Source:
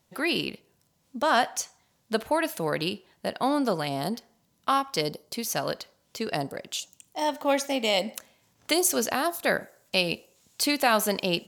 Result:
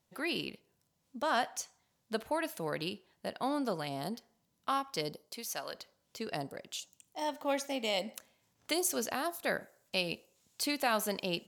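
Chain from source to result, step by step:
0:05.26–0:05.72: high-pass filter 330 Hz → 940 Hz 6 dB per octave
level −8.5 dB

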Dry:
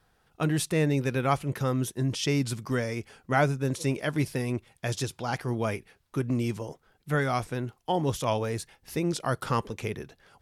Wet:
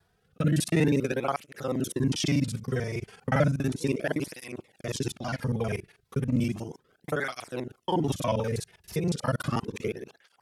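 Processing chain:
reversed piece by piece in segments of 40 ms
rotating-speaker cabinet horn 0.85 Hz, later 6 Hz, at 0:03.16
through-zero flanger with one copy inverted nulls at 0.34 Hz, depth 3.9 ms
level +5 dB

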